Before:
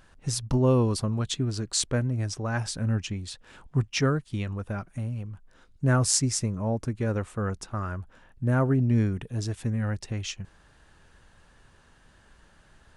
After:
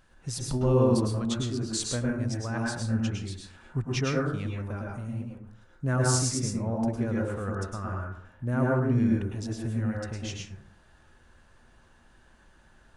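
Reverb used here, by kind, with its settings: plate-style reverb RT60 0.6 s, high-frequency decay 0.4×, pre-delay 95 ms, DRR -2 dB; trim -5.5 dB

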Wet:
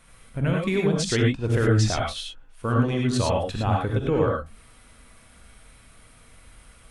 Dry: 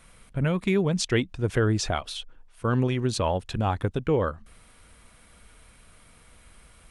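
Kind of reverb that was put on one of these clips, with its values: gated-style reverb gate 130 ms rising, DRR -1.5 dB; trim -1.5 dB

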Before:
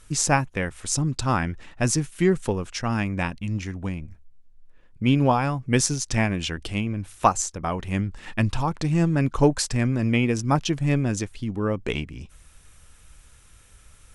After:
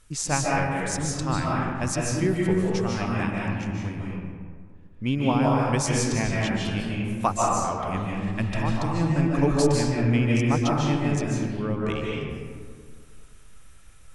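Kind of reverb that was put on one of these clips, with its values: algorithmic reverb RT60 1.9 s, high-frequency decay 0.45×, pre-delay 110 ms, DRR -4 dB; trim -6 dB

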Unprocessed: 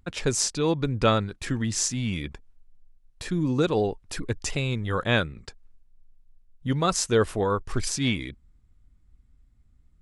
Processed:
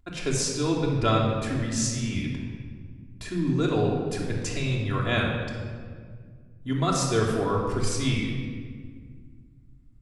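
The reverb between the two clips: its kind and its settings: simulated room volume 2700 m³, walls mixed, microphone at 3.1 m; trim -5.5 dB

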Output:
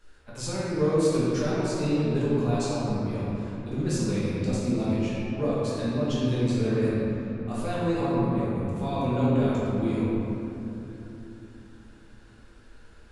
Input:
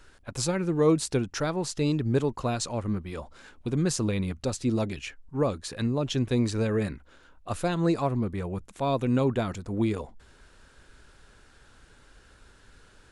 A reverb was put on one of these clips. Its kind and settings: simulated room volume 150 m³, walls hard, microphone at 1.3 m; trim -10 dB

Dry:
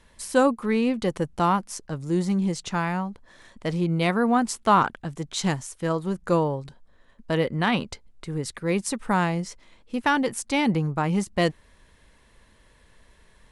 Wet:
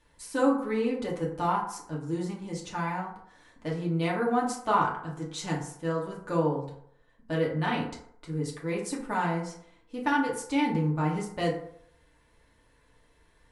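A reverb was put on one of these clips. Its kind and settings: FDN reverb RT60 0.67 s, low-frequency decay 0.8×, high-frequency decay 0.45×, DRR -4 dB; trim -11 dB

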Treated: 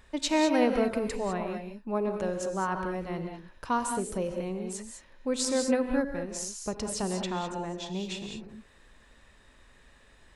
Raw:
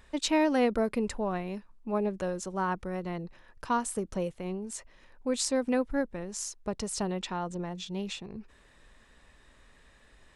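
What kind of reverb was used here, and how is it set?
gated-style reverb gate 230 ms rising, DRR 4.5 dB

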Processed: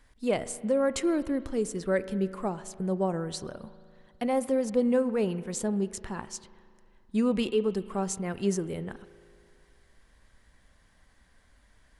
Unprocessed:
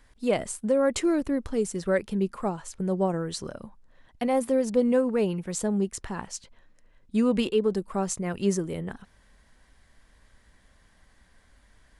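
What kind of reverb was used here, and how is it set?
spring tank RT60 2.3 s, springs 37 ms, chirp 30 ms, DRR 15 dB; trim -2.5 dB

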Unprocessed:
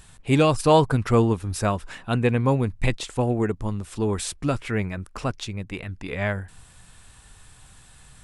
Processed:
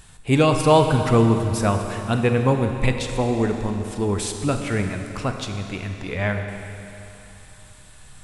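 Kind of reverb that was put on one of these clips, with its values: Schroeder reverb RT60 3.1 s, combs from 31 ms, DRR 5 dB; trim +1.5 dB

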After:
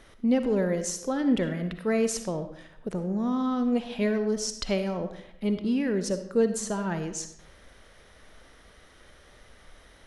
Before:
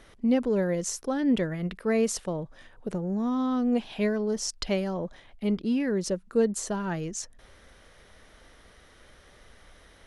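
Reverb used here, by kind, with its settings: algorithmic reverb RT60 0.75 s, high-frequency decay 0.75×, pre-delay 20 ms, DRR 8.5 dB

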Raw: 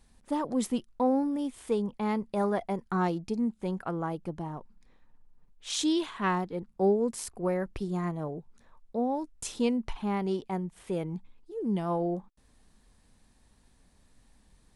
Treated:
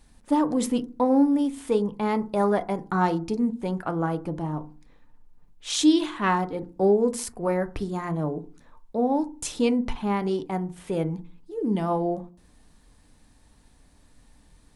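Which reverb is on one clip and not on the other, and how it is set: FDN reverb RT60 0.36 s, low-frequency decay 1.45×, high-frequency decay 0.35×, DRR 9 dB; trim +5 dB

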